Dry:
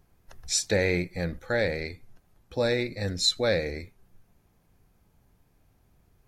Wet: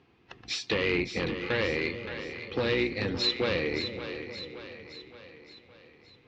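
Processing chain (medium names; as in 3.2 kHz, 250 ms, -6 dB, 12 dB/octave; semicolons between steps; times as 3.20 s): octave divider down 2 oct, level +2 dB; bass shelf 210 Hz -4.5 dB; compression 2.5:1, threshold -29 dBFS, peak gain reduction 7 dB; sine folder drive 7 dB, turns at -17 dBFS; cabinet simulation 140–4100 Hz, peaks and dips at 170 Hz -7 dB, 340 Hz +3 dB, 600 Hz -10 dB, 880 Hz -3 dB, 1.5 kHz -5 dB, 2.7 kHz +6 dB; on a send: two-band feedback delay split 520 Hz, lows 435 ms, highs 569 ms, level -9 dB; on the sum: trim -2.5 dB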